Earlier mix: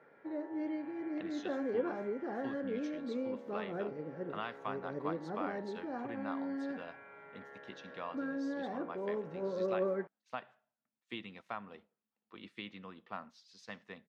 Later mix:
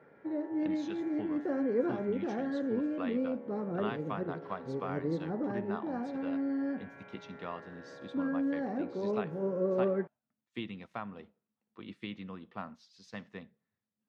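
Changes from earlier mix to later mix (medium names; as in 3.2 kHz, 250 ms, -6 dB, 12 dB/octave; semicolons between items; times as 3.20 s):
speech: entry -0.55 s; master: add bass shelf 310 Hz +11 dB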